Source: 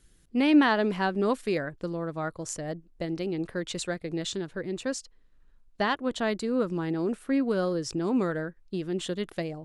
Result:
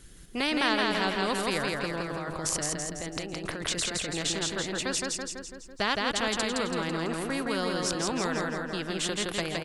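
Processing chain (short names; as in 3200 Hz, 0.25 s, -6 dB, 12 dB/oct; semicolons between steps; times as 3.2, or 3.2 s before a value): 2.01–4.11 negative-ratio compressor -38 dBFS, ratio -1; feedback echo 0.166 s, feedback 46%, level -4 dB; spectral compressor 2:1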